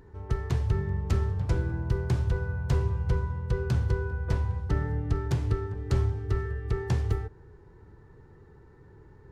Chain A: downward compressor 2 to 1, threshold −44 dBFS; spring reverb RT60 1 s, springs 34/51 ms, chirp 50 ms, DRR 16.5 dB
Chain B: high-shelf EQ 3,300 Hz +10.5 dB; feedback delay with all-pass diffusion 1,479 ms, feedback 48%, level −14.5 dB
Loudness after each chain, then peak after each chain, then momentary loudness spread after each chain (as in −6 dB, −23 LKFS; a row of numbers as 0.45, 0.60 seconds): −40.5, −29.5 LKFS; −26.0, −14.5 dBFS; 15, 15 LU